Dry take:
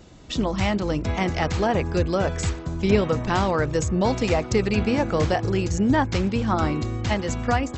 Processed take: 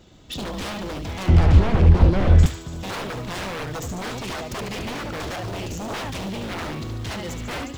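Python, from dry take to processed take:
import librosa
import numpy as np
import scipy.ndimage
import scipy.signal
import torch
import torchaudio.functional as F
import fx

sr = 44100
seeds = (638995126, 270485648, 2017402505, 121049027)

p1 = x + 10.0 ** (-7.5 / 20.0) * np.pad(x, (int(72 * sr / 1000.0), 0))[:len(x)]
p2 = fx.quant_float(p1, sr, bits=2)
p3 = p1 + (p2 * librosa.db_to_amplitude(-5.0))
p4 = fx.peak_eq(p3, sr, hz=3400.0, db=6.5, octaves=0.39)
p5 = p4 + fx.echo_wet_highpass(p4, sr, ms=145, feedback_pct=71, hz=2900.0, wet_db=-11.0, dry=0)
p6 = 10.0 ** (-17.5 / 20.0) * (np.abs((p5 / 10.0 ** (-17.5 / 20.0) + 3.0) % 4.0 - 2.0) - 1.0)
p7 = fx.riaa(p6, sr, side='playback', at=(1.28, 2.46))
y = fx.upward_expand(p7, sr, threshold_db=-23.0, expansion=1.5)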